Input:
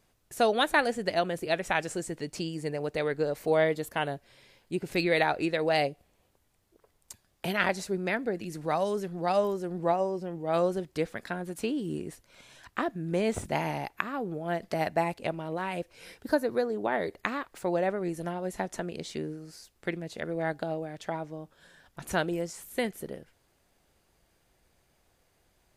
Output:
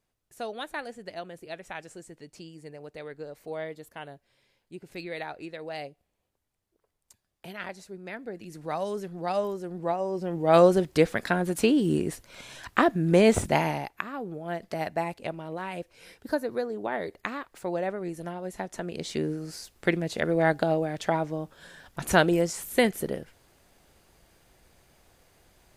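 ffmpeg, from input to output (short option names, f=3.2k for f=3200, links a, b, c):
-af "volume=19dB,afade=t=in:st=8:d=0.92:silence=0.354813,afade=t=in:st=10.02:d=0.52:silence=0.281838,afade=t=out:st=13.31:d=0.6:silence=0.281838,afade=t=in:st=18.73:d=0.72:silence=0.316228"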